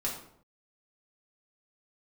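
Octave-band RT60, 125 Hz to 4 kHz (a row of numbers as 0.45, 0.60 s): 0.80, 0.75, 0.70, 0.65, 0.50, 0.45 s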